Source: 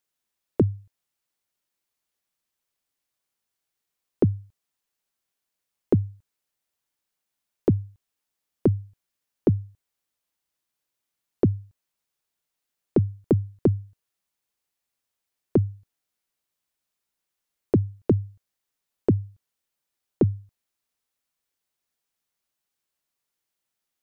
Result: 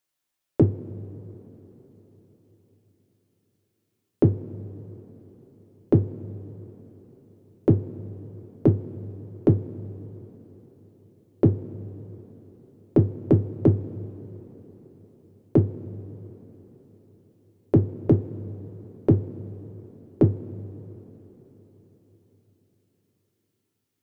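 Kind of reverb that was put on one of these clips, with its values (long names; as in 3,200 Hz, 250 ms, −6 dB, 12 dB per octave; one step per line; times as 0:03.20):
coupled-rooms reverb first 0.2 s, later 4.7 s, from −22 dB, DRR 2.5 dB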